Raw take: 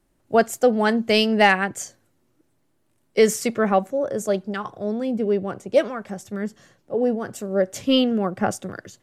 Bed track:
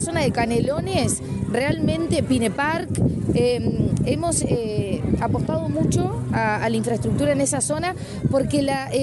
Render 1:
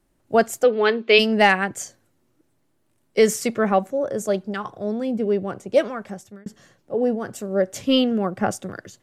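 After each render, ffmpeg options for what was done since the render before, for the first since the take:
-filter_complex "[0:a]asplit=3[a][b][c];[a]afade=t=out:st=0.63:d=0.02[d];[b]highpass=350,equalizer=f=410:t=q:w=4:g=9,equalizer=f=740:t=q:w=4:g=-10,equalizer=f=1.2k:t=q:w=4:g=3,equalizer=f=2.5k:t=q:w=4:g=9,equalizer=f=3.7k:t=q:w=4:g=7,lowpass=f=4.4k:w=0.5412,lowpass=f=4.4k:w=1.3066,afade=t=in:st=0.63:d=0.02,afade=t=out:st=1.18:d=0.02[e];[c]afade=t=in:st=1.18:d=0.02[f];[d][e][f]amix=inputs=3:normalize=0,asplit=2[g][h];[g]atrim=end=6.46,asetpts=PTS-STARTPTS,afade=t=out:st=6.06:d=0.4[i];[h]atrim=start=6.46,asetpts=PTS-STARTPTS,afade=t=in:d=0.004:c=hsin[j];[i][j]concat=n=2:v=0:a=1"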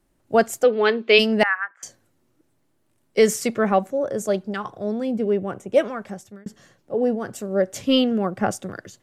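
-filter_complex "[0:a]asettb=1/sr,asplit=3[a][b][c];[a]atrim=end=1.434[d];[b]atrim=start=1.43:end=1.83,asetpts=PTS-STARTPTS,afade=t=in:d=0.004:c=qsin,afade=t=out:st=0.396:d=0.004:c=qsin,asuperpass=centerf=1400:order=4:qfactor=2.1[e];[c]atrim=start=1.826[f];[d][e]acrossfade=d=0.004:c1=hsin:c2=qsin[g];[g][f]acrossfade=d=0.004:c1=qsin:c2=hsin,asettb=1/sr,asplit=3[h][i][j];[h]atrim=end=5.304[k];[i]atrim=start=5.3:end=5.88,asetpts=PTS-STARTPTS,afade=t=in:d=0.004:c=qsin,afade=t=out:st=0.576:d=0.004:c=qsin,equalizer=f=4.5k:w=4.7:g=-14[l];[j]atrim=start=5.876[m];[k][l]acrossfade=d=0.004:c1=hsin:c2=qsin[n];[n][m]acrossfade=d=0.004:c1=qsin:c2=hsin"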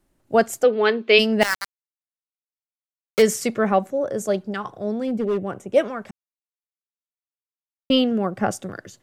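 -filter_complex "[0:a]asplit=3[a][b][c];[a]afade=t=out:st=1.41:d=0.02[d];[b]aeval=exprs='val(0)*gte(abs(val(0)),0.119)':c=same,afade=t=in:st=1.41:d=0.02,afade=t=out:st=3.21:d=0.02[e];[c]afade=t=in:st=3.21:d=0.02[f];[d][e][f]amix=inputs=3:normalize=0,asettb=1/sr,asplit=3[g][h][i];[g]atrim=end=5.004[j];[h]atrim=start=5:end=5.48,asetpts=PTS-STARTPTS,afade=t=in:d=0.004:c=qsin,afade=t=out:st=0.476:d=0.004:c=qsin,volume=18dB,asoftclip=hard,volume=-18dB[k];[i]atrim=start=5.476[l];[j][k]acrossfade=d=0.004:c1=hsin:c2=qsin[m];[m][l]acrossfade=d=0.004:c1=qsin:c2=hsin,asplit=3[n][o][p];[n]atrim=end=6.11,asetpts=PTS-STARTPTS,afade=t=out:st=6.106:d=0.004:c=hsin[q];[o]atrim=start=6.11:end=7.9,asetpts=PTS-STARTPTS,volume=0[r];[p]atrim=start=7.9,asetpts=PTS-STARTPTS,afade=t=in:d=0.004:c=hsin[s];[q][r][s]concat=n=3:v=0:a=1"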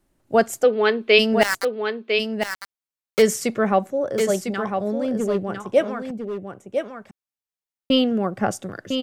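-af "aecho=1:1:1002:0.473"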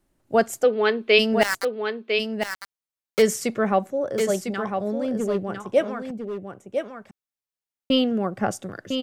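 -af "volume=-2dB"

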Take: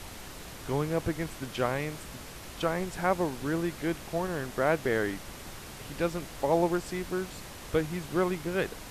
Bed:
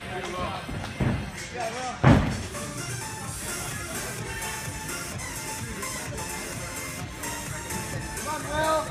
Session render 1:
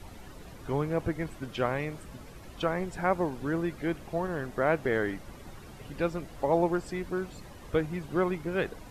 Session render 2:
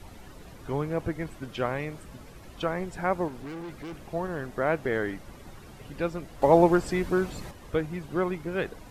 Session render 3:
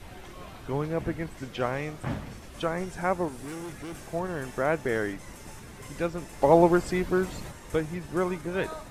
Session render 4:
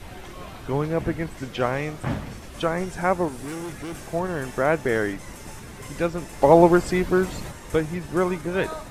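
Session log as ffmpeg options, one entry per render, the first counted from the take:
-af "afftdn=nr=11:nf=-44"
-filter_complex "[0:a]asettb=1/sr,asplit=3[a][b][c];[a]atrim=end=3.284[d];[b]atrim=start=3.28:end=3.95,asetpts=PTS-STARTPTS,afade=t=in:d=0.004:c=qsin,afade=t=out:st=0.666:d=0.004:c=qsin,asoftclip=type=hard:threshold=-36dB[e];[c]atrim=start=3.946[f];[d][e]acrossfade=d=0.004:c1=hsin:c2=qsin[g];[g][f]acrossfade=d=0.004:c1=qsin:c2=hsin,asplit=3[h][i][j];[h]atrim=end=6.422[k];[i]atrim=start=6.418:end=7.512,asetpts=PTS-STARTPTS,volume=7dB[l];[j]atrim=start=7.508[m];[k][l]acrossfade=d=0.004:c1=hsin:c2=hsin[n];[n][m]acrossfade=d=0.004:c1=hsin:c2=hsin"
-filter_complex "[1:a]volume=-15.5dB[a];[0:a][a]amix=inputs=2:normalize=0"
-af "volume=5dB,alimiter=limit=-2dB:level=0:latency=1"

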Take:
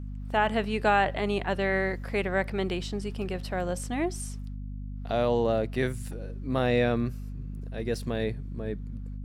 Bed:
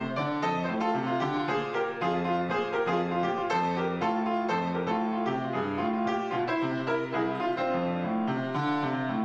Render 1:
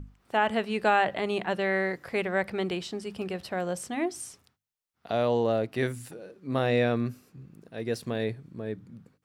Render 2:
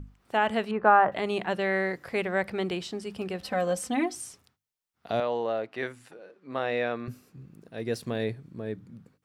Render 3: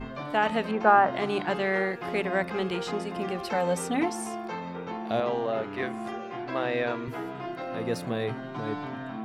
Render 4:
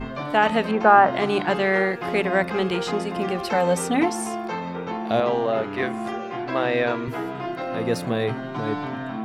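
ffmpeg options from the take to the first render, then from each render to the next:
-af "bandreject=f=50:t=h:w=6,bandreject=f=100:t=h:w=6,bandreject=f=150:t=h:w=6,bandreject=f=200:t=h:w=6,bandreject=f=250:t=h:w=6,bandreject=f=300:t=h:w=6"
-filter_complex "[0:a]asettb=1/sr,asplit=3[a][b][c];[a]atrim=end=0.714[d];[b]atrim=start=0.71:end=1.12,asetpts=PTS-STARTPTS,afade=t=in:d=0.004:c=qsin,afade=t=out:st=0.406:d=0.004:c=qsin,lowpass=f=1.2k:t=q:w=2.6[e];[c]atrim=start=1.116[f];[d][e]acrossfade=d=0.004:c1=hsin:c2=qsin[g];[g][f]acrossfade=d=0.004:c1=qsin:c2=hsin,asettb=1/sr,asplit=3[h][i][j];[h]atrim=end=3.424[k];[i]atrim=start=3.42:end=4.15,asetpts=PTS-STARTPTS,afade=t=in:d=0.004:c=qsin,afade=t=out:st=0.726:d=0.004:c=qsin,aecho=1:1:3.9:0.97,atrim=end_sample=32193[l];[j]atrim=start=4.146[m];[k][l]acrossfade=d=0.004:c1=hsin:c2=qsin[n];[n][m]acrossfade=d=0.004:c1=qsin:c2=hsin,asettb=1/sr,asplit=3[o][p][q];[o]atrim=end=5.204[r];[p]atrim=start=5.2:end=7.08,asetpts=PTS-STARTPTS,afade=t=in:d=0.004:c=qsin,afade=t=out:st=1.876:d=0.004:c=qsin,bandpass=f=1.3k:t=q:w=0.52[s];[q]atrim=start=7.076[t];[r][s]acrossfade=d=0.004:c1=hsin:c2=qsin[u];[u][t]acrossfade=d=0.004:c1=qsin:c2=hsin"
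-filter_complex "[1:a]volume=-7dB[a];[0:a][a]amix=inputs=2:normalize=0"
-af "volume=6dB,alimiter=limit=-3dB:level=0:latency=1"

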